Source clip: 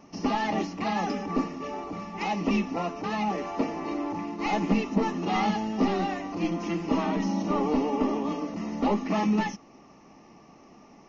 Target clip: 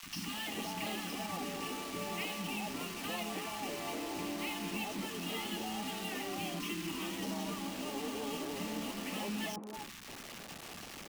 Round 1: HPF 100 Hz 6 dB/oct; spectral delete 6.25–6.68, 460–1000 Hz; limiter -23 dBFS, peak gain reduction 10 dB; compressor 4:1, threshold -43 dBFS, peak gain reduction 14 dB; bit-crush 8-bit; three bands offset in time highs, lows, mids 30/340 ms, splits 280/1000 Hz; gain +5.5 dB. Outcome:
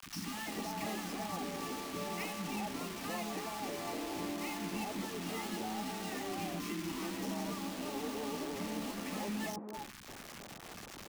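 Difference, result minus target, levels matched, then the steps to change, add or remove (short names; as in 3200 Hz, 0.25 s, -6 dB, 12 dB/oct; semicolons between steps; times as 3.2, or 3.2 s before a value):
4000 Hz band -3.0 dB
add after HPF: bell 3100 Hz +12.5 dB 0.66 oct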